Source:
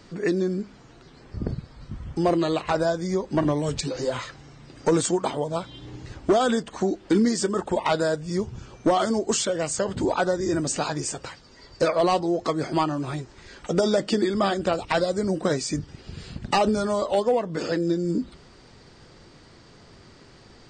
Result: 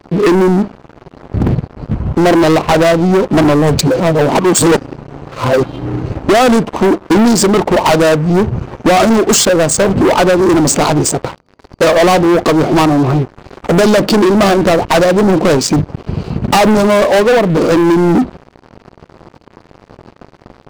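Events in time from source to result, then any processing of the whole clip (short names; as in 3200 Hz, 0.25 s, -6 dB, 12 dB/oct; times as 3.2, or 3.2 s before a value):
4–5.63 reverse
whole clip: Wiener smoothing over 25 samples; HPF 100 Hz 6 dB/oct; sample leveller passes 5; gain +5.5 dB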